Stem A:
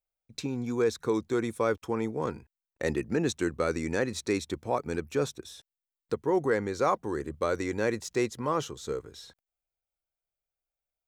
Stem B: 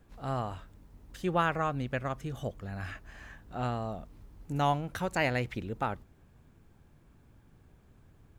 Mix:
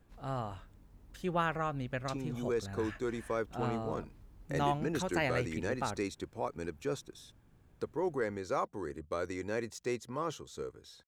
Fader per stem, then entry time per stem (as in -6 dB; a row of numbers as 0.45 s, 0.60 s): -7.5 dB, -4.0 dB; 1.70 s, 0.00 s